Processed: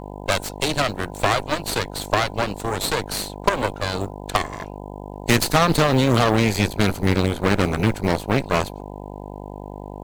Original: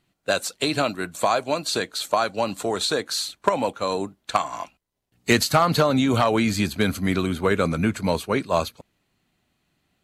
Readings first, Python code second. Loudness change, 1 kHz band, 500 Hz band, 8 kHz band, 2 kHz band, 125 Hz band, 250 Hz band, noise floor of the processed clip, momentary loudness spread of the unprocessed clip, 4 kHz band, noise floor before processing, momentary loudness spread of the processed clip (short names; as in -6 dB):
+1.5 dB, +1.0 dB, +0.5 dB, +1.5 dB, +3.0 dB, +5.5 dB, +1.5 dB, -35 dBFS, 7 LU, +1.0 dB, -73 dBFS, 19 LU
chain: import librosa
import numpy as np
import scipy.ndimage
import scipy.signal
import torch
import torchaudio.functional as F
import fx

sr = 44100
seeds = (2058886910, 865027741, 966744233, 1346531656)

y = fx.low_shelf(x, sr, hz=110.0, db=9.5)
y = fx.cheby_harmonics(y, sr, harmonics=(7, 8), levels_db=(-24, -14), full_scale_db=-4.5)
y = fx.dmg_buzz(y, sr, base_hz=50.0, harmonics=20, level_db=-35.0, tilt_db=-2, odd_only=False)
y = fx.quant_float(y, sr, bits=4)